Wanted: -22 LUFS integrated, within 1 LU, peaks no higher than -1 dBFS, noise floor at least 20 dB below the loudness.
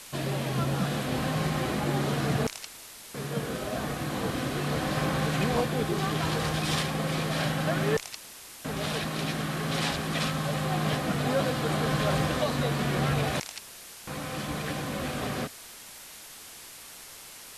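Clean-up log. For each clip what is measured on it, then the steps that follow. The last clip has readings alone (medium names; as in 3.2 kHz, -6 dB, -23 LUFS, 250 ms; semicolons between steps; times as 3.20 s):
noise floor -46 dBFS; noise floor target -49 dBFS; loudness -29.0 LUFS; peak level -13.5 dBFS; loudness target -22.0 LUFS
-> noise print and reduce 6 dB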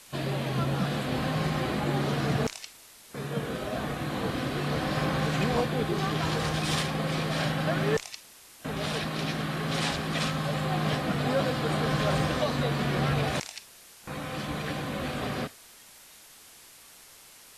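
noise floor -52 dBFS; loudness -29.5 LUFS; peak level -14.0 dBFS; loudness target -22.0 LUFS
-> trim +7.5 dB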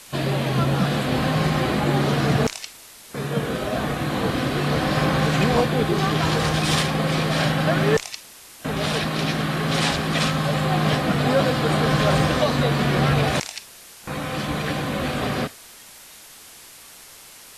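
loudness -22.0 LUFS; peak level -6.5 dBFS; noise floor -45 dBFS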